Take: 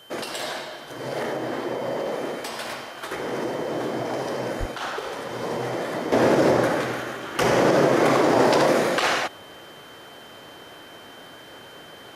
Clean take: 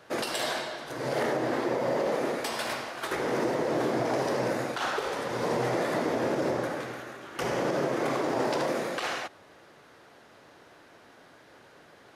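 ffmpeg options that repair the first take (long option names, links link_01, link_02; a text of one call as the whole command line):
ffmpeg -i in.wav -filter_complex "[0:a]bandreject=frequency=3100:width=30,asplit=3[link_01][link_02][link_03];[link_01]afade=type=out:start_time=4.59:duration=0.02[link_04];[link_02]highpass=frequency=140:width=0.5412,highpass=frequency=140:width=1.3066,afade=type=in:start_time=4.59:duration=0.02,afade=type=out:start_time=4.71:duration=0.02[link_05];[link_03]afade=type=in:start_time=4.71:duration=0.02[link_06];[link_04][link_05][link_06]amix=inputs=3:normalize=0,agate=range=-21dB:threshold=-36dB,asetnsamples=nb_out_samples=441:pad=0,asendcmd='6.12 volume volume -10dB',volume=0dB" out.wav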